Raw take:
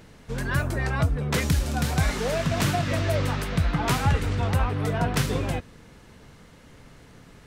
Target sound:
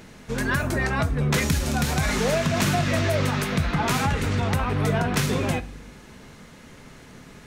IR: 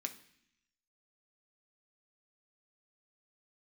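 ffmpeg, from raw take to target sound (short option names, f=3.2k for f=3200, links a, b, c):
-filter_complex "[0:a]alimiter=limit=-17.5dB:level=0:latency=1:release=66,asplit=2[a][b];[1:a]atrim=start_sample=2205,lowshelf=f=64:g=11[c];[b][c]afir=irnorm=-1:irlink=0,volume=1dB[d];[a][d]amix=inputs=2:normalize=0"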